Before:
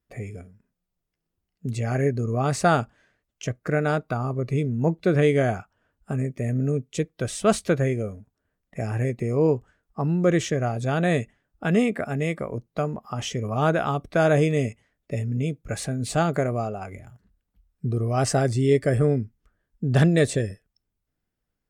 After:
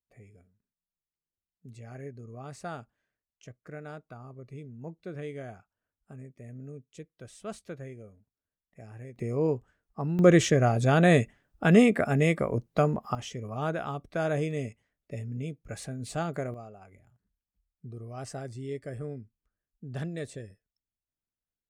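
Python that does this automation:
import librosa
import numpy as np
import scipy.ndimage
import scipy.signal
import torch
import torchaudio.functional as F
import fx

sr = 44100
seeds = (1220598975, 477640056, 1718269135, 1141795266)

y = fx.gain(x, sr, db=fx.steps((0.0, -19.0), (9.16, -6.5), (10.19, 2.0), (13.15, -9.5), (16.54, -17.0)))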